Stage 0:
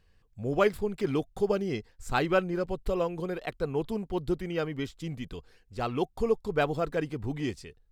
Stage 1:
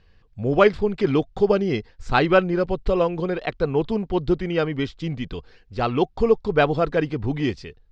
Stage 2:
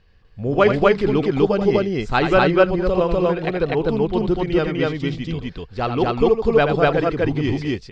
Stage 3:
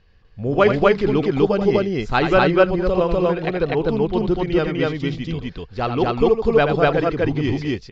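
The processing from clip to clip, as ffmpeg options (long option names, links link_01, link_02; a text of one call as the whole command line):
ffmpeg -i in.wav -af "lowpass=frequency=5200:width=0.5412,lowpass=frequency=5200:width=1.3066,volume=8.5dB" out.wav
ffmpeg -i in.wav -af "aecho=1:1:81.63|247.8:0.398|1" out.wav
ffmpeg -i in.wav -af "aresample=16000,aresample=44100" out.wav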